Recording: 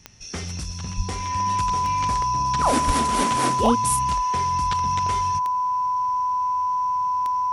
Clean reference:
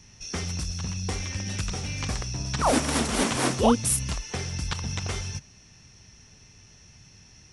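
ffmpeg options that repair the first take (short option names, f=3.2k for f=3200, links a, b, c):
-filter_complex "[0:a]adeclick=t=4,bandreject=f=1k:w=30,asplit=3[a][b][c];[a]afade=t=out:st=0.96:d=0.02[d];[b]highpass=f=140:w=0.5412,highpass=f=140:w=1.3066,afade=t=in:st=0.96:d=0.02,afade=t=out:st=1.08:d=0.02[e];[c]afade=t=in:st=1.08:d=0.02[f];[d][e][f]amix=inputs=3:normalize=0,asplit=3[g][h][i];[g]afade=t=out:st=2.86:d=0.02[j];[h]highpass=f=140:w=0.5412,highpass=f=140:w=1.3066,afade=t=in:st=2.86:d=0.02,afade=t=out:st=2.98:d=0.02[k];[i]afade=t=in:st=2.98:d=0.02[l];[j][k][l]amix=inputs=3:normalize=0"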